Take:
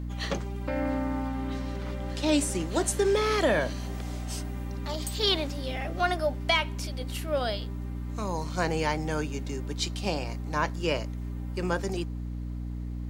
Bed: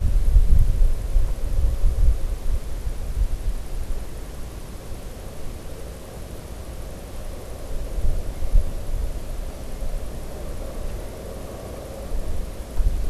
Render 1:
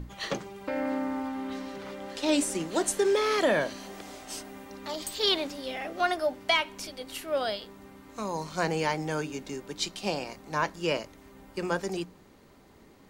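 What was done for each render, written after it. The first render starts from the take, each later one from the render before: hum notches 60/120/180/240/300 Hz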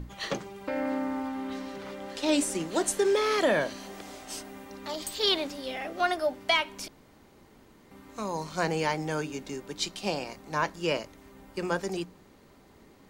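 6.88–7.91 s: room tone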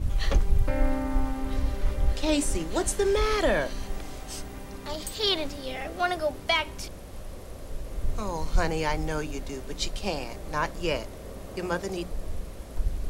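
add bed -7 dB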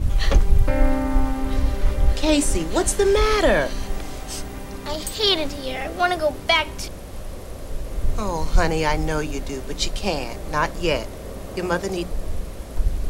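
trim +6.5 dB

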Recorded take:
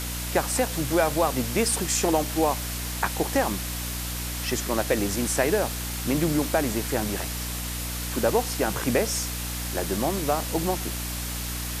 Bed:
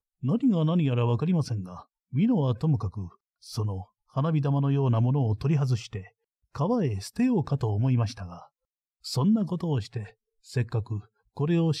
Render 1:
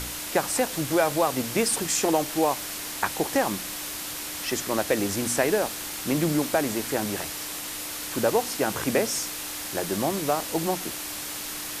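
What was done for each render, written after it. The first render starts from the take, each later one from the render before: de-hum 60 Hz, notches 4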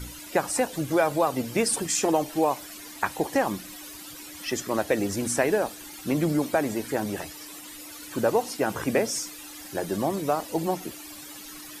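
noise reduction 14 dB, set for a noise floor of -35 dBFS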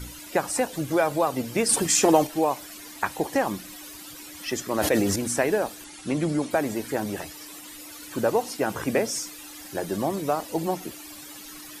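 1.69–2.27 s: gain +5 dB; 4.74–5.16 s: decay stretcher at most 26 dB/s; 5.84–6.51 s: Chebyshev low-pass 11 kHz, order 8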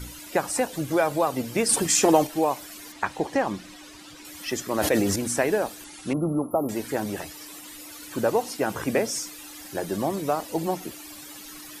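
2.92–4.25 s: distance through air 62 m; 6.13–6.69 s: brick-wall FIR band-stop 1.4–10 kHz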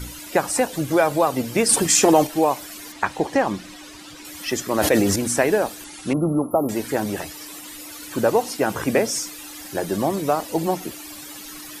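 trim +4.5 dB; peak limiter -3 dBFS, peak gain reduction 3 dB

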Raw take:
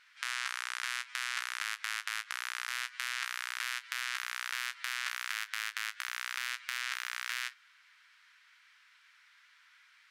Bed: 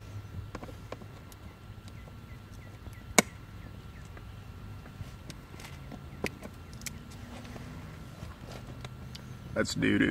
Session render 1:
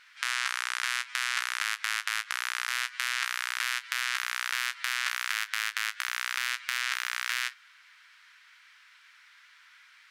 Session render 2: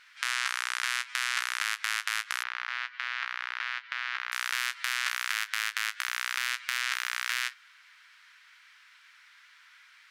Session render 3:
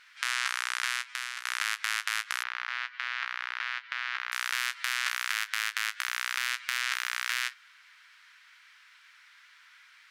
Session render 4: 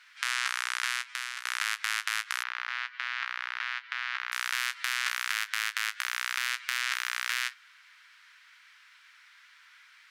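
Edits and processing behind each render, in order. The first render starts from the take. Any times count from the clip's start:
trim +6 dB
2.43–4.32 s: distance through air 270 m
0.85–1.45 s: fade out, to -12.5 dB
high-pass 630 Hz 24 dB/octave

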